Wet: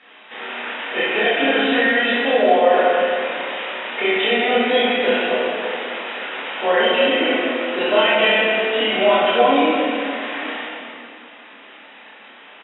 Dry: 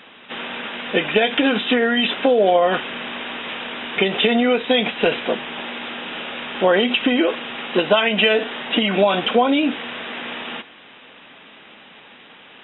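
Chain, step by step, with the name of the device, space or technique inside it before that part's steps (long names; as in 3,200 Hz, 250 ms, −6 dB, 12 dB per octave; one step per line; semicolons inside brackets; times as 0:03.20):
station announcement (band-pass filter 370–3,500 Hz; parametric band 1,900 Hz +4 dB 0.37 octaves; loudspeakers that aren't time-aligned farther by 10 metres −1 dB, 21 metres −9 dB, 63 metres −10 dB, 95 metres −10 dB; convolution reverb RT60 2.4 s, pre-delay 5 ms, DRR −7 dB)
level −8.5 dB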